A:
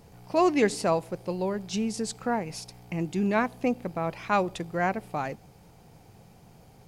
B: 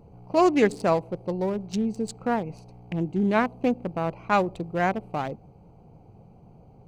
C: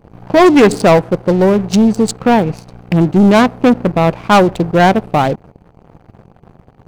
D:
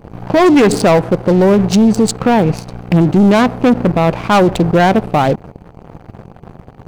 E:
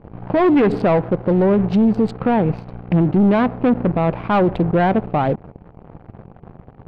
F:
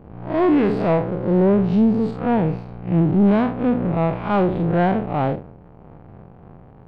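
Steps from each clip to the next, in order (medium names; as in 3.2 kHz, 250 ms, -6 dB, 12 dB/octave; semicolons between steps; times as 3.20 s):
local Wiener filter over 25 samples; trim +3 dB
waveshaping leveller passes 3; trim +6.5 dB
peak limiter -12 dBFS, peak gain reduction 10.5 dB; trim +7.5 dB
distance through air 410 m; trim -4.5 dB
spectral blur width 106 ms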